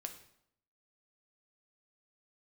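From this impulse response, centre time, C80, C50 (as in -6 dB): 12 ms, 13.0 dB, 10.0 dB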